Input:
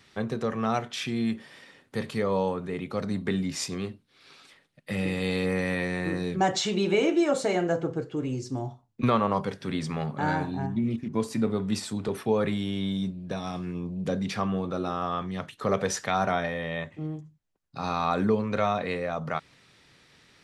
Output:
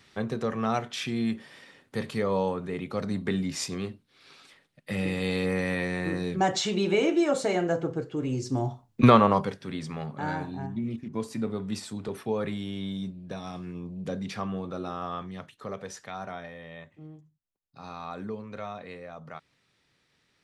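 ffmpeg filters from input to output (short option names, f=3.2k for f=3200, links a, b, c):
-af "volume=7.5dB,afade=t=in:st=8.18:d=0.88:silence=0.398107,afade=t=out:st=9.06:d=0.54:silence=0.251189,afade=t=out:st=15.15:d=0.61:silence=0.421697"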